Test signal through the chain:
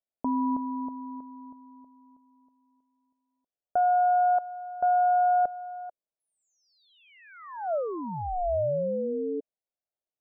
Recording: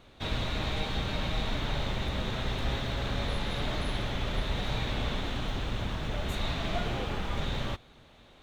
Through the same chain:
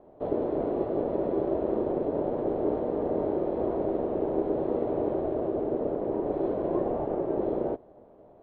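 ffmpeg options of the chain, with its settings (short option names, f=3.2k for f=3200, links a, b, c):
-af "aeval=exprs='val(0)*sin(2*PI*360*n/s)':c=same,lowpass=f=640:t=q:w=3.5,volume=2dB"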